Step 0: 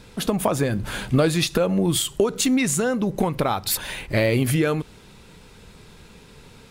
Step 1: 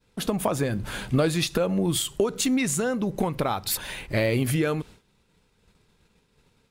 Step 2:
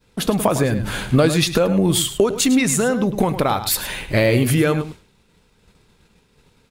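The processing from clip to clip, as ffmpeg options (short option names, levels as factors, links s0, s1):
-af "agate=range=0.0224:threshold=0.0158:ratio=3:detection=peak,volume=0.668"
-filter_complex "[0:a]asplit=2[s0][s1];[s1]adelay=105,volume=0.282,highshelf=f=4000:g=-2.36[s2];[s0][s2]amix=inputs=2:normalize=0,volume=2.24"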